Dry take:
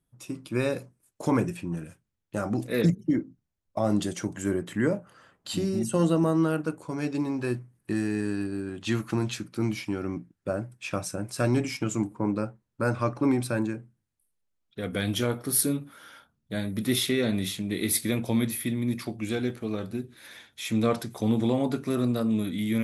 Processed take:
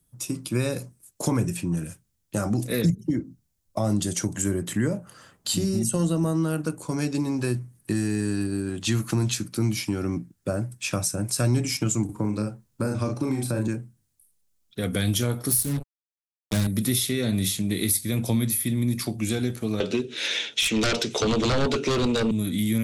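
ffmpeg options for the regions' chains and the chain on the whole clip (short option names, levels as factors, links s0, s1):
-filter_complex "[0:a]asettb=1/sr,asplit=3[s0][s1][s2];[s0]atrim=end=12.054[s3];[s1]atrim=start=12.05:end=13.68,asetpts=PTS-STARTPTS,afade=t=in:d=0.004:c=qsin,afade=t=out:st=1.626:d=0.004:c=qsin,asplit=2[s4][s5];[s5]adelay=38,volume=0.708[s6];[s4][s6]amix=inputs=2:normalize=0,atrim=end_sample=71883,acrossover=split=650|1900[s7][s8][s9];[s7]acompressor=threshold=0.0447:ratio=4[s10];[s8]acompressor=threshold=0.00631:ratio=4[s11];[s9]acompressor=threshold=0.00355:ratio=4[s12];[s10][s11][s12]amix=inputs=3:normalize=0[s13];[s2]atrim=start=13.676[s14];[s3][s13]acrossfade=d=0.004:c1=hsin:c2=qsin[s15];[s15][s14]acrossfade=d=0.004:c1=qsin:c2=hsin,asettb=1/sr,asplit=3[s16][s17][s18];[s16]atrim=end=15.514[s19];[s17]atrim=start=15.51:end=16.67,asetpts=PTS-STARTPTS,afade=t=in:d=0.004:c=qsin,afade=t=out:st=1.156:d=0.004:c=qsin,lowshelf=f=98:g=11.5,acrusher=bits=4:mix=0:aa=0.5[s20];[s18]atrim=start=16.666[s21];[s19][s20]acrossfade=d=0.004:c1=hsin:c2=qsin[s22];[s22][s21]acrossfade=d=0.004:c1=qsin:c2=hsin,asettb=1/sr,asplit=3[s23][s24][s25];[s23]atrim=end=19.804[s26];[s24]atrim=start=19.8:end=22.31,asetpts=PTS-STARTPTS,afade=t=in:d=0.004:c=qsin,afade=t=out:st=2.506:d=0.004:c=qsin,highpass=420,equalizer=f=440:t=q:w=4:g=7,equalizer=f=760:t=q:w=4:g=-7,equalizer=f=1100:t=q:w=4:g=-9,equalizer=f=1700:t=q:w=4:g=-5,equalizer=f=2800:t=q:w=4:g=8,equalizer=f=4600:t=q:w=4:g=-6,lowpass=f=5700:w=0.5412,lowpass=f=5700:w=1.3066,aeval=exprs='0.178*sin(PI/2*4.47*val(0)/0.178)':c=same[s27];[s25]atrim=start=22.306[s28];[s26][s27]acrossfade=d=0.004:c1=hsin:c2=qsin[s29];[s29][s28]acrossfade=d=0.004:c1=qsin:c2=hsin,bass=f=250:g=5,treble=f=4000:g=12,acrossover=split=120[s30][s31];[s31]acompressor=threshold=0.0447:ratio=4[s32];[s30][s32]amix=inputs=2:normalize=0,volume=1.5"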